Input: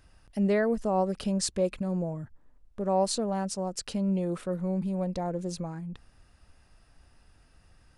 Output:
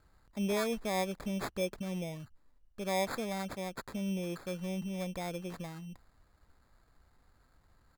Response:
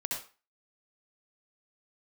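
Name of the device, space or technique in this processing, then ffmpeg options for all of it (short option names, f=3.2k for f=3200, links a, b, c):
crushed at another speed: -af "equalizer=f=1.7k:t=o:w=1.6:g=4.5,asetrate=35280,aresample=44100,acrusher=samples=19:mix=1:aa=0.000001,asetrate=55125,aresample=44100,volume=-7.5dB"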